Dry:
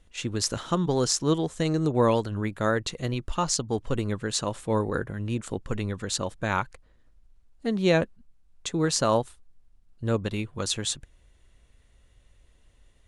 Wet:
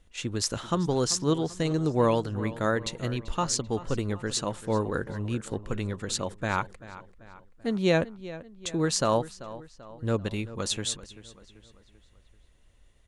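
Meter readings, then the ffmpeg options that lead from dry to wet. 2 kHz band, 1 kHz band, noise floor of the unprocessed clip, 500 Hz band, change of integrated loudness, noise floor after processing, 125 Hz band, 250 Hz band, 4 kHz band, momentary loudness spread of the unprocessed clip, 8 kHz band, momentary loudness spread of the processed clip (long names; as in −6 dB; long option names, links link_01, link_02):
−1.5 dB, −1.5 dB, −60 dBFS, −1.5 dB, −1.5 dB, −60 dBFS, −1.5 dB, −1.5 dB, −1.5 dB, 9 LU, −1.5 dB, 15 LU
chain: -filter_complex "[0:a]asplit=2[link_01][link_02];[link_02]adelay=388,lowpass=frequency=4500:poles=1,volume=-16dB,asplit=2[link_03][link_04];[link_04]adelay=388,lowpass=frequency=4500:poles=1,volume=0.5,asplit=2[link_05][link_06];[link_06]adelay=388,lowpass=frequency=4500:poles=1,volume=0.5,asplit=2[link_07][link_08];[link_08]adelay=388,lowpass=frequency=4500:poles=1,volume=0.5[link_09];[link_01][link_03][link_05][link_07][link_09]amix=inputs=5:normalize=0,volume=-1.5dB"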